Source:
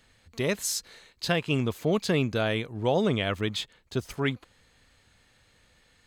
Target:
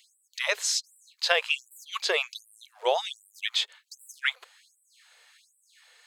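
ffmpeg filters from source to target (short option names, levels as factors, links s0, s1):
-filter_complex "[0:a]tiltshelf=f=700:g=-4.5,acrossover=split=7300[s0][s1];[s1]acompressor=threshold=0.002:ratio=4:attack=1:release=60[s2];[s0][s2]amix=inputs=2:normalize=0,afftfilt=real='re*gte(b*sr/1024,380*pow(7600/380,0.5+0.5*sin(2*PI*1.3*pts/sr)))':imag='im*gte(b*sr/1024,380*pow(7600/380,0.5+0.5*sin(2*PI*1.3*pts/sr)))':win_size=1024:overlap=0.75,volume=1.33"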